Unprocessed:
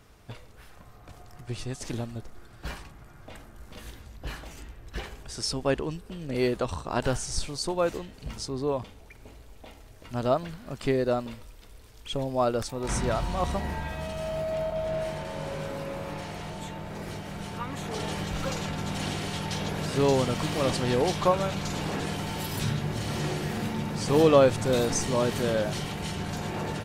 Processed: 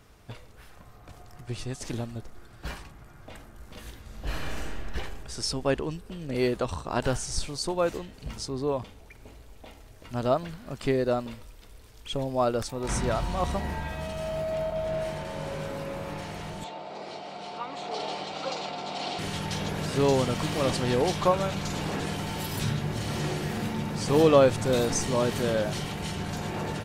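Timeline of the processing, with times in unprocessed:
4.01–4.81 reverb throw, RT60 2.2 s, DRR -5 dB
16.64–19.19 speaker cabinet 350–6800 Hz, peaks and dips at 720 Hz +8 dB, 1700 Hz -9 dB, 4300 Hz +5 dB, 6400 Hz -6 dB

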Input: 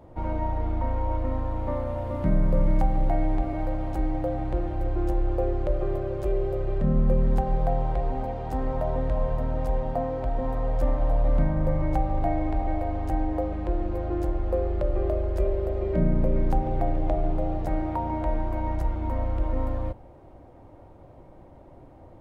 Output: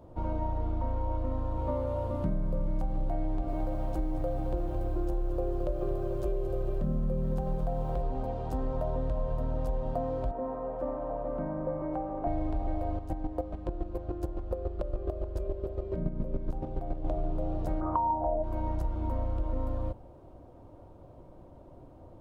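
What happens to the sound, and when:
1.56–2.07 doubler 15 ms -4 dB
3.26–8.02 lo-fi delay 0.22 s, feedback 35%, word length 9-bit, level -10 dB
10.31–12.27 three-band isolator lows -19 dB, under 210 Hz, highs -24 dB, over 2100 Hz
12.96–17.06 chopper 7.1 Hz, depth 65%, duty 20%
17.8–18.42 synth low-pass 1300 Hz -> 630 Hz, resonance Q 9.1
whole clip: bell 2000 Hz -10 dB 0.61 oct; notch 810 Hz, Q 12; compressor, threshold -24 dBFS; gain -2 dB

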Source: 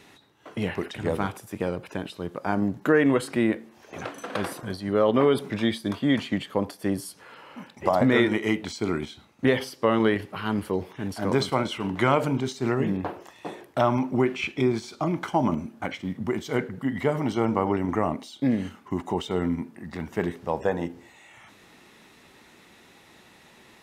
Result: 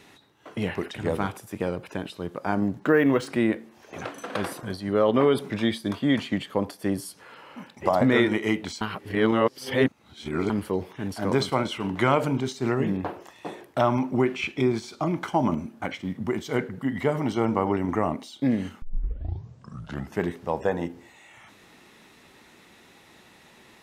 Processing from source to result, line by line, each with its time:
2.79–3.27 decimation joined by straight lines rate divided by 3×
8.81–10.5 reverse
18.82 tape start 1.40 s

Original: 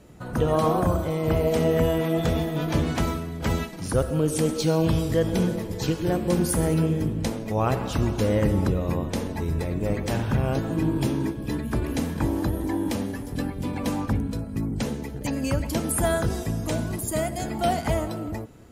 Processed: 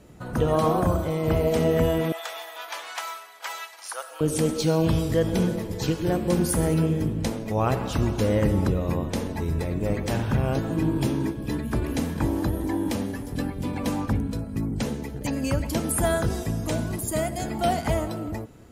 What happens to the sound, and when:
2.12–4.21 HPF 820 Hz 24 dB/oct

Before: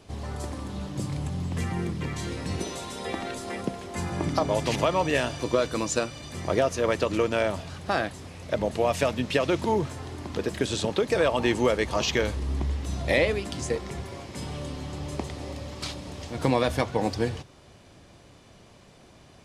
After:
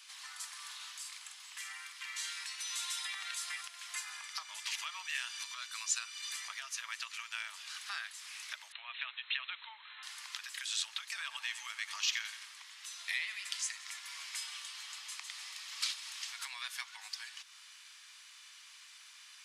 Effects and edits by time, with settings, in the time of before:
0.57–2.44 doubler 48 ms -5 dB
8.72–10.03 brick-wall FIR low-pass 4200 Hz
11.22–13.94 split-band echo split 1400 Hz, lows 0.114 s, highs 87 ms, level -14 dB
whole clip: compressor 3:1, threshold -36 dBFS; Bessel high-pass 2100 Hz, order 8; gain +6.5 dB

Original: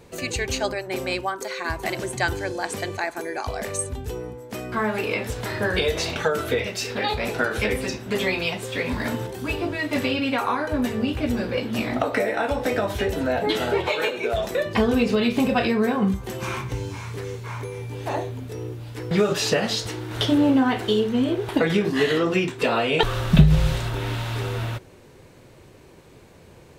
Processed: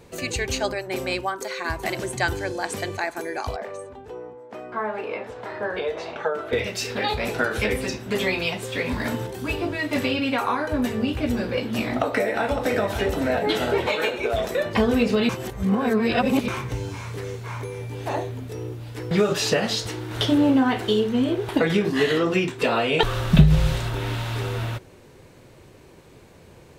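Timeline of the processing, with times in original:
3.56–6.53 band-pass 770 Hz, Q 0.94
11.79–12.83 echo throw 0.56 s, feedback 75%, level -10 dB
15.29–16.48 reverse

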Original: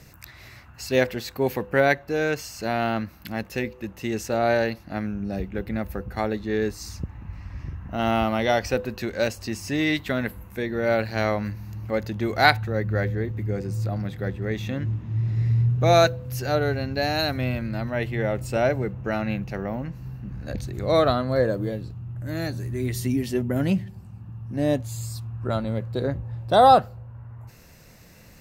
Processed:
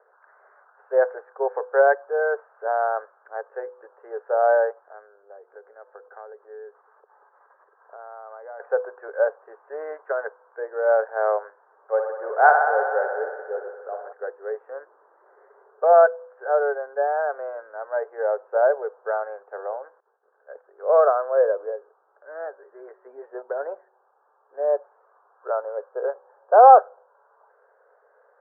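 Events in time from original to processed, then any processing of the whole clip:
4.71–8.6 compressor, threshold -34 dBFS
11.82–14.13 band-limited delay 61 ms, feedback 82%, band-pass 1000 Hz, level -5.5 dB
20–20.81 expander -28 dBFS
whole clip: dynamic EQ 670 Hz, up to +5 dB, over -33 dBFS, Q 0.86; Chebyshev band-pass 420–1600 Hz, order 5

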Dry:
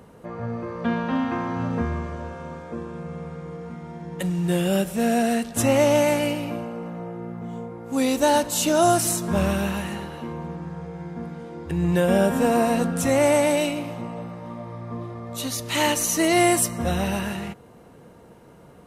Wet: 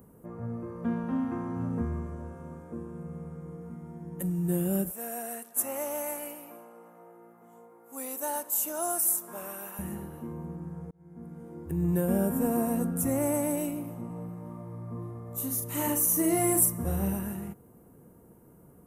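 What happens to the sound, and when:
4.91–9.79 HPF 670 Hz
10.91–11.49 fade in
14.06–17.13 doubler 41 ms -5 dB
whole clip: EQ curve 340 Hz 0 dB, 570 Hz -7 dB, 1200 Hz -7 dB, 4100 Hz -20 dB, 13000 Hz +12 dB; gain -5 dB

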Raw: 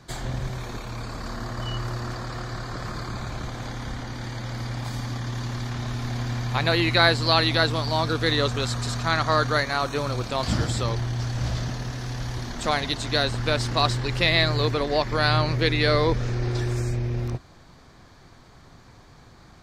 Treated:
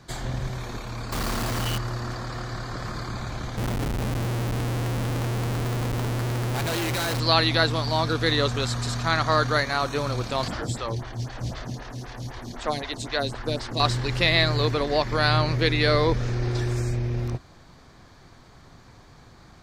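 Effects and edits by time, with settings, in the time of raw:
1.12–1.78 companded quantiser 2-bit
3.57–7.2 Schmitt trigger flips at -32.5 dBFS
10.48–13.8 photocell phaser 3.9 Hz

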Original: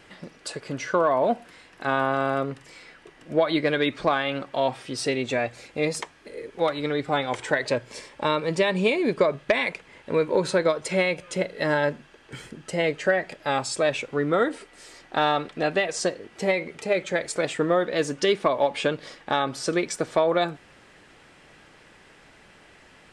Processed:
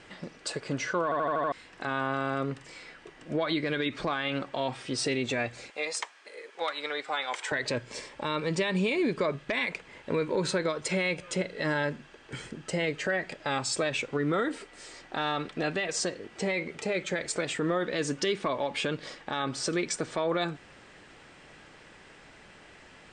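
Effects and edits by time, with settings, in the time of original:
1.04 stutter in place 0.08 s, 6 plays
5.7–7.52 HPF 760 Hz
whole clip: steep low-pass 9200 Hz 72 dB/oct; dynamic EQ 650 Hz, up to -6 dB, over -33 dBFS, Q 1.2; limiter -19.5 dBFS

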